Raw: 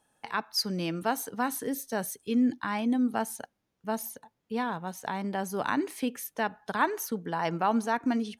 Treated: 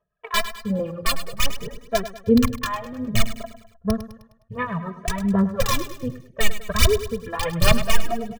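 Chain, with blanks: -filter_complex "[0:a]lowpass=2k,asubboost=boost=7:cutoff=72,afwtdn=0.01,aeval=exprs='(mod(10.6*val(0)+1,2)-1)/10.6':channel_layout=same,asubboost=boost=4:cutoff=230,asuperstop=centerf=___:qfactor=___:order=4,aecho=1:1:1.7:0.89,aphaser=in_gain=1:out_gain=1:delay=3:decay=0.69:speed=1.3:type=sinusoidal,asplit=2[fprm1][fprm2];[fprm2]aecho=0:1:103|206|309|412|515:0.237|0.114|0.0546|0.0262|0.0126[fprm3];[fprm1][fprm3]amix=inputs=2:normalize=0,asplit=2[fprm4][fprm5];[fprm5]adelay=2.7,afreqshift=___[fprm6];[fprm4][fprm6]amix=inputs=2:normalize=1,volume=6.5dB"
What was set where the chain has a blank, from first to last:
760, 7, 0.61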